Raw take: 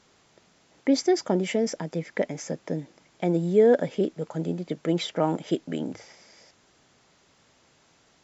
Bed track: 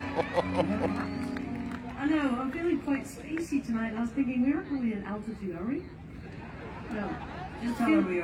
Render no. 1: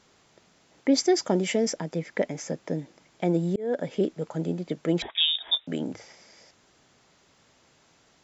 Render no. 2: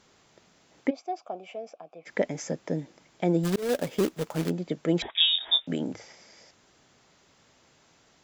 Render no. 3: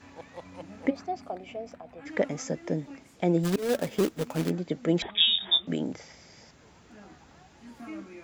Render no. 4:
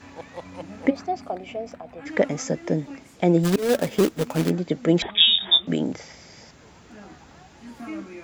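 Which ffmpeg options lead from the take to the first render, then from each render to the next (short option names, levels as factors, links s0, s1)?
-filter_complex "[0:a]asettb=1/sr,asplit=3[s0][s1][s2];[s0]atrim=end=0.974[s3];[s1]atrim=start=0.97:end=1.72,asetpts=PTS-STARTPTS,afade=t=in:d=0.004:c=qsin,afade=t=out:st=0.746:d=0.004:c=qsin,highshelf=f=3800:g=6.5[s4];[s2]atrim=start=1.716[s5];[s3][s4]acrossfade=d=0.004:c1=hsin:c2=qsin[s6];[s6][s5]acrossfade=d=0.004:c1=qsin:c2=hsin,asettb=1/sr,asplit=3[s7][s8][s9];[s7]atrim=end=5.024[s10];[s8]atrim=start=5.02:end=5.67,asetpts=PTS-STARTPTS,afade=t=in:d=0.004:c=qsin,afade=t=out:st=0.646:d=0.004:c=qsin,lowpass=f=3300:t=q:w=0.5098,lowpass=f=3300:t=q:w=0.6013,lowpass=f=3300:t=q:w=0.9,lowpass=f=3300:t=q:w=2.563,afreqshift=-3900[s11];[s9]atrim=start=5.666[s12];[s10][s11]acrossfade=d=0.004:c1=hsin:c2=qsin[s13];[s13][s12]acrossfade=d=0.004:c1=qsin:c2=hsin,asplit=2[s14][s15];[s14]atrim=end=3.56,asetpts=PTS-STARTPTS,afade=t=out:st=3.556:d=0.004:c=hsin[s16];[s15]atrim=start=3.56,asetpts=PTS-STARTPTS,afade=t=in:d=0.41[s17];[s16][s17]concat=n=2:v=0:a=1"
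-filter_complex "[0:a]asplit=3[s0][s1][s2];[s0]afade=t=out:st=0.89:d=0.02[s3];[s1]asplit=3[s4][s5][s6];[s4]bandpass=f=730:t=q:w=8,volume=1[s7];[s5]bandpass=f=1090:t=q:w=8,volume=0.501[s8];[s6]bandpass=f=2440:t=q:w=8,volume=0.355[s9];[s7][s8][s9]amix=inputs=3:normalize=0,afade=t=in:st=0.89:d=0.02,afade=t=out:st=2.05:d=0.02[s10];[s2]afade=t=in:st=2.05:d=0.02[s11];[s3][s10][s11]amix=inputs=3:normalize=0,asplit=3[s12][s13][s14];[s12]afade=t=out:st=3.43:d=0.02[s15];[s13]acrusher=bits=2:mode=log:mix=0:aa=0.000001,afade=t=in:st=3.43:d=0.02,afade=t=out:st=4.49:d=0.02[s16];[s14]afade=t=in:st=4.49:d=0.02[s17];[s15][s16][s17]amix=inputs=3:normalize=0,asettb=1/sr,asplit=3[s18][s19][s20];[s18]atrim=end=5.144[s21];[s19]atrim=start=5.14:end=5.74,asetpts=PTS-STARTPTS,afade=t=in:d=0.004:c=qsin,afade=t=out:st=0.596:d=0.004:c=qsin,asplit=2[s22][s23];[s23]adelay=23,volume=0.708[s24];[s22][s24]amix=inputs=2:normalize=0,atrim=end_sample=26460[s25];[s20]atrim=start=5.736[s26];[s21][s25]acrossfade=d=0.004:c1=hsin:c2=qsin[s27];[s27][s26]acrossfade=d=0.004:c1=qsin:c2=hsin"
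-filter_complex "[1:a]volume=0.158[s0];[0:a][s0]amix=inputs=2:normalize=0"
-af "volume=2"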